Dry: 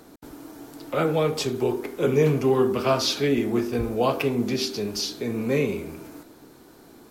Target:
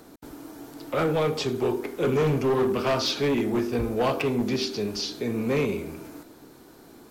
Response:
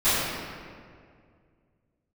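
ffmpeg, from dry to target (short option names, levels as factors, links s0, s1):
-filter_complex "[0:a]acrossover=split=5900[s0][s1];[s1]acompressor=threshold=0.00398:ratio=4:attack=1:release=60[s2];[s0][s2]amix=inputs=2:normalize=0,asoftclip=type=hard:threshold=0.112"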